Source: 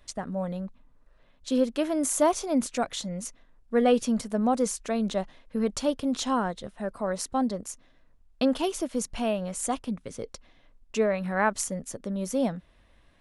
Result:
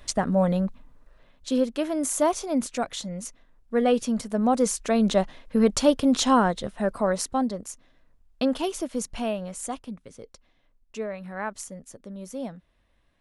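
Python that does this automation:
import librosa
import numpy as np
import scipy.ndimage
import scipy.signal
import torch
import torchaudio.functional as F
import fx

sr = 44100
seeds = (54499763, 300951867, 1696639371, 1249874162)

y = fx.gain(x, sr, db=fx.line((0.66, 9.5), (1.68, 0.0), (4.13, 0.0), (5.13, 7.0), (6.97, 7.0), (7.5, 0.0), (9.19, 0.0), (10.21, -7.5)))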